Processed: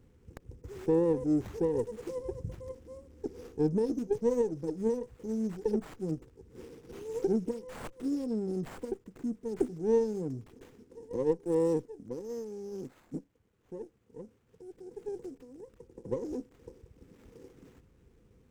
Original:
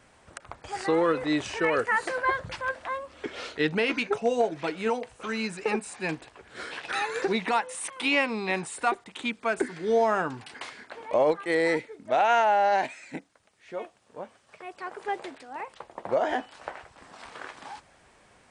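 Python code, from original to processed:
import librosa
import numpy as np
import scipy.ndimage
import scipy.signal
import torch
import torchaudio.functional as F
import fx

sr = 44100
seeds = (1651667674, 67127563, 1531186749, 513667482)

y = fx.brickwall_bandstop(x, sr, low_hz=530.0, high_hz=5100.0)
y = fx.low_shelf(y, sr, hz=140.0, db=10.5)
y = fx.running_max(y, sr, window=9)
y = y * 10.0 ** (-2.5 / 20.0)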